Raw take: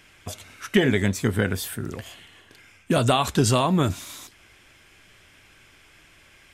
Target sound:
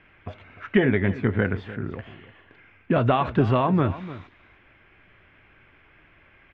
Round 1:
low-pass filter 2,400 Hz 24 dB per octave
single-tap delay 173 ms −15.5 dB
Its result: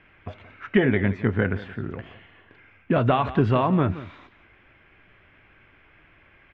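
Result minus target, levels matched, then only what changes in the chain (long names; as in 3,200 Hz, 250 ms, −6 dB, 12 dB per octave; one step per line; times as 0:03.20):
echo 126 ms early
change: single-tap delay 299 ms −15.5 dB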